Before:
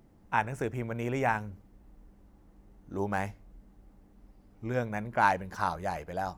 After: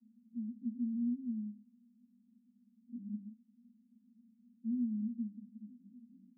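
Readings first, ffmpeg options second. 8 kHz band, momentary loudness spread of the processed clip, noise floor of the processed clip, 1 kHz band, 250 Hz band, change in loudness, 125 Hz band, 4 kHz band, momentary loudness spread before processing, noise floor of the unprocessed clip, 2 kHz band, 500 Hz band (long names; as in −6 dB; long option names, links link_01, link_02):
below −25 dB, 19 LU, −71 dBFS, below −40 dB, +1.5 dB, −8.0 dB, below −15 dB, below −35 dB, 10 LU, −60 dBFS, below −40 dB, below −40 dB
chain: -af "asuperpass=centerf=230:order=8:qfactor=5.3,volume=5.5dB"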